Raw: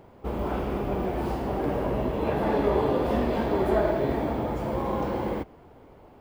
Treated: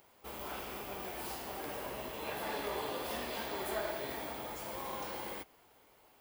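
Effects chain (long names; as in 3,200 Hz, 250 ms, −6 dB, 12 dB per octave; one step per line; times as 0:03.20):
first-order pre-emphasis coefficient 0.97
level +7 dB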